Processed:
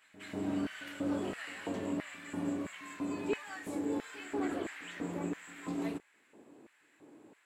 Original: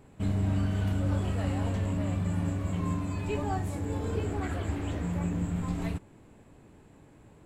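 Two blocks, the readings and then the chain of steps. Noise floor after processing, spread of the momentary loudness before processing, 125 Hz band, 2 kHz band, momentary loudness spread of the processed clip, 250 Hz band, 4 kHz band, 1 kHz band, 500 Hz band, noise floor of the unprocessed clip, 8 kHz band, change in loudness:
−69 dBFS, 4 LU, −20.0 dB, +0.5 dB, 7 LU, −3.5 dB, −1.5 dB, −6.0 dB, −2.5 dB, −56 dBFS, −3.0 dB, −7.0 dB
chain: auto-filter high-pass square 1.5 Hz 310–1,800 Hz
backwards echo 193 ms −18 dB
level −3.5 dB

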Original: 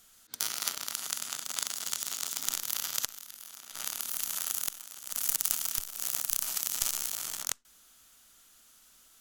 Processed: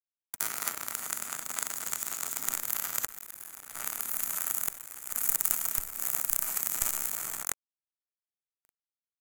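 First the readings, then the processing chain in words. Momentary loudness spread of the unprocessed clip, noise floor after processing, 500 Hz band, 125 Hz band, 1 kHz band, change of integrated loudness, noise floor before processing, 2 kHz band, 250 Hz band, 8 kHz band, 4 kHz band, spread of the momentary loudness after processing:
8 LU, below −85 dBFS, +4.0 dB, +4.0 dB, +3.5 dB, +1.0 dB, −60 dBFS, +2.5 dB, +3.5 dB, 0.0 dB, −8.0 dB, 9 LU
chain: dynamic equaliser 9,900 Hz, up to −3 dB, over −46 dBFS, Q 1.8
bit reduction 8 bits
flat-topped bell 4,100 Hz −11.5 dB 1.3 octaves
level +3.5 dB

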